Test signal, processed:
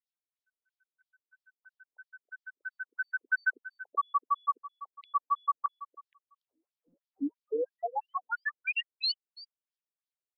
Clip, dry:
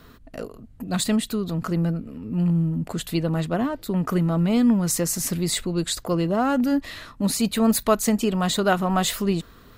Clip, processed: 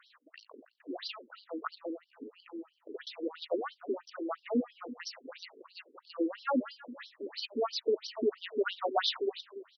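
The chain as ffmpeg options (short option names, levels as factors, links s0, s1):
-filter_complex "[0:a]aeval=exprs='0.531*(cos(1*acos(clip(val(0)/0.531,-1,1)))-cos(1*PI/2))+0.0211*(cos(5*acos(clip(val(0)/0.531,-1,1)))-cos(5*PI/2))':c=same,asplit=2[s0][s1];[s1]adelay=285.7,volume=0.178,highshelf=f=4000:g=-6.43[s2];[s0][s2]amix=inputs=2:normalize=0,afftfilt=real='re*between(b*sr/1024,330*pow(4300/330,0.5+0.5*sin(2*PI*3*pts/sr))/1.41,330*pow(4300/330,0.5+0.5*sin(2*PI*3*pts/sr))*1.41)':imag='im*between(b*sr/1024,330*pow(4300/330,0.5+0.5*sin(2*PI*3*pts/sr))/1.41,330*pow(4300/330,0.5+0.5*sin(2*PI*3*pts/sr))*1.41)':win_size=1024:overlap=0.75,volume=0.668"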